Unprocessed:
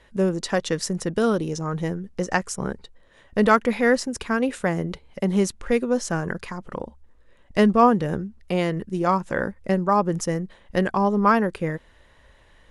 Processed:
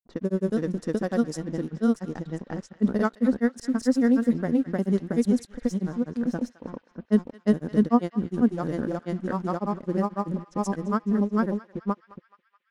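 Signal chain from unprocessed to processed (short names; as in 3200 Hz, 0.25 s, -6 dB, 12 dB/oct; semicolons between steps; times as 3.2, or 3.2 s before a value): fifteen-band EQ 250 Hz +12 dB, 1000 Hz -3 dB, 2500 Hz -11 dB; crossover distortion -42 dBFS; grains 0.1 s, grains 20/s, spray 0.667 s, pitch spread up and down by 0 st; low-pass opened by the level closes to 1000 Hz, open at -18.5 dBFS; on a send: narrowing echo 0.213 s, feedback 74%, band-pass 2600 Hz, level -14 dB; on the sum: gain -6 dB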